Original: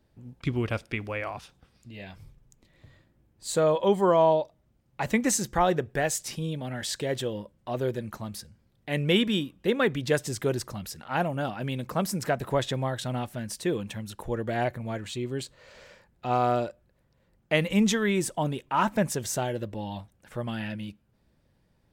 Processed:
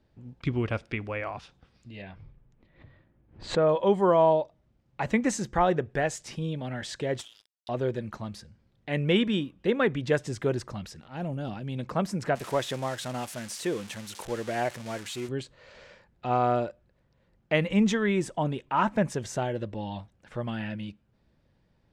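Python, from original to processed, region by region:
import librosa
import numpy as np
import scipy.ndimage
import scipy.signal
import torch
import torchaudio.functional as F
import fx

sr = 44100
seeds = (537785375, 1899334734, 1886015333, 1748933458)

y = fx.chain(x, sr, fx.lowpass(hz=2500.0, slope=12),
    fx.pre_swell(db_per_s=140.0), at=(2.02, 3.69))
y = fx.chain(y, sr, fx.cheby2_highpass(hz=1400.0, order=4, stop_db=60),
    fx.leveller(passes=5), at=(7.19, 7.69))
y = fx.chain(y, sr, fx.peak_eq(hz=1300.0, db=-11.5, octaves=2.9),
    fx.transient(attack_db=-6, sustain_db=7), at=(11.0, 11.78))
y = fx.chain(y, sr, fx.crossing_spikes(level_db=-23.0),
    fx.low_shelf(hz=160.0, db=-11.0), at=(12.35, 15.29))
y = scipy.signal.sosfilt(scipy.signal.butter(2, 5500.0, 'lowpass', fs=sr, output='sos'), y)
y = fx.dynamic_eq(y, sr, hz=4300.0, q=1.1, threshold_db=-47.0, ratio=4.0, max_db=-5)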